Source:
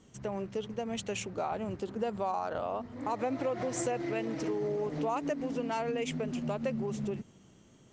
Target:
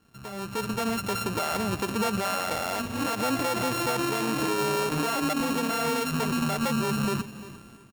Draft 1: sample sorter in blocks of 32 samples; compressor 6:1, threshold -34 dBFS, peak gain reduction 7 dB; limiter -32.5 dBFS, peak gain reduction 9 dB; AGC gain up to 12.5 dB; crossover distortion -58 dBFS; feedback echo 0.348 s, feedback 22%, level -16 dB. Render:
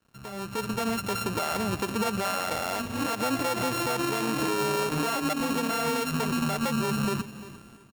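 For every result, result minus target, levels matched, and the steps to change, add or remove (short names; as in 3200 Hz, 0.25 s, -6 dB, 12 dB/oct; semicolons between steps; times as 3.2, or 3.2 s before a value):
compressor: peak gain reduction +7 dB; crossover distortion: distortion +7 dB
remove: compressor 6:1, threshold -34 dBFS, peak gain reduction 7 dB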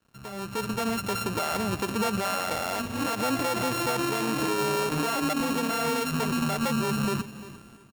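crossover distortion: distortion +7 dB
change: crossover distortion -65 dBFS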